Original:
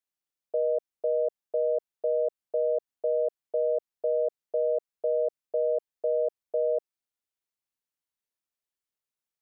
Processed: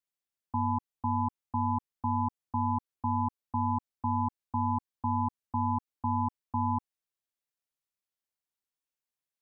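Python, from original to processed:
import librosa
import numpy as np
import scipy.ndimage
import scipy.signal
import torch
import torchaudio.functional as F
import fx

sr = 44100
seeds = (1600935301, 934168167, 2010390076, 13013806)

y = x * np.sin(2.0 * np.pi * 380.0 * np.arange(len(x)) / sr)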